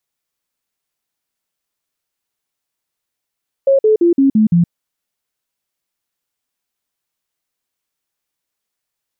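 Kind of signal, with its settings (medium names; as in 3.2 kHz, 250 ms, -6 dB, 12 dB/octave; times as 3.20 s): stepped sine 545 Hz down, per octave 3, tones 6, 0.12 s, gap 0.05 s -7.5 dBFS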